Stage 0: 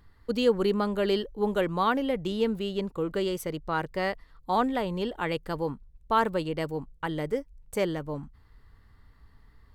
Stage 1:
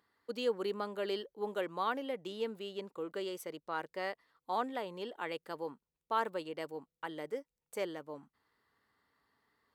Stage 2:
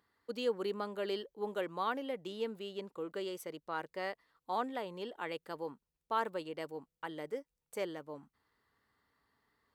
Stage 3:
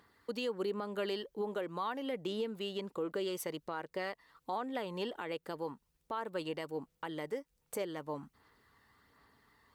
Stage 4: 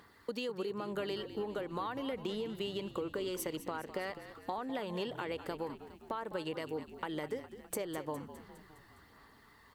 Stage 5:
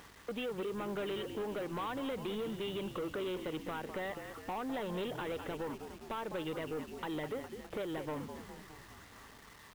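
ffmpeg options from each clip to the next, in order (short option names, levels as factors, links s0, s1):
-af "highpass=330,volume=0.376"
-af "lowshelf=f=98:g=8,volume=0.891"
-af "acompressor=threshold=0.00501:ratio=1.5,aphaser=in_gain=1:out_gain=1:delay=1.1:decay=0.28:speed=1.3:type=sinusoidal,alimiter=level_in=4.22:limit=0.0631:level=0:latency=1:release=247,volume=0.237,volume=2.82"
-filter_complex "[0:a]acompressor=threshold=0.00891:ratio=6,asplit=2[s0][s1];[s1]asplit=6[s2][s3][s4][s5][s6][s7];[s2]adelay=205,afreqshift=-50,volume=0.237[s8];[s3]adelay=410,afreqshift=-100,volume=0.138[s9];[s4]adelay=615,afreqshift=-150,volume=0.0794[s10];[s5]adelay=820,afreqshift=-200,volume=0.0462[s11];[s6]adelay=1025,afreqshift=-250,volume=0.0269[s12];[s7]adelay=1230,afreqshift=-300,volume=0.0155[s13];[s8][s9][s10][s11][s12][s13]amix=inputs=6:normalize=0[s14];[s0][s14]amix=inputs=2:normalize=0,volume=2"
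-af "aresample=8000,asoftclip=type=tanh:threshold=0.0119,aresample=44100,acrusher=bits=9:mix=0:aa=0.000001,aeval=exprs='val(0)+0.000316*(sin(2*PI*50*n/s)+sin(2*PI*2*50*n/s)/2+sin(2*PI*3*50*n/s)/3+sin(2*PI*4*50*n/s)/4+sin(2*PI*5*50*n/s)/5)':c=same,volume=1.68"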